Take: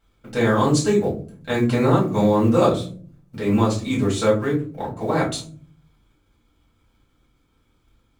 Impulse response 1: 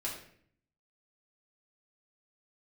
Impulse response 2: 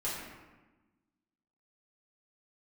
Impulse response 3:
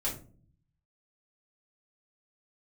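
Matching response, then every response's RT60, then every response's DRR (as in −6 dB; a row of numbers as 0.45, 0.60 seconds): 3; 0.60, 1.2, 0.45 seconds; −5.5, −8.5, −6.5 decibels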